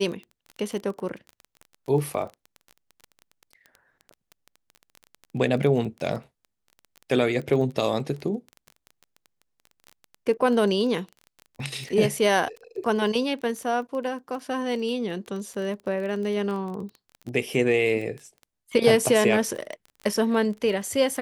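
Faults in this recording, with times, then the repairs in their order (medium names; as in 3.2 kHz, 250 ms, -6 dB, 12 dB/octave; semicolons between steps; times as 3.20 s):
crackle 20 per s -32 dBFS
11.89–11.90 s: dropout 5.9 ms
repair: de-click; interpolate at 11.89 s, 5.9 ms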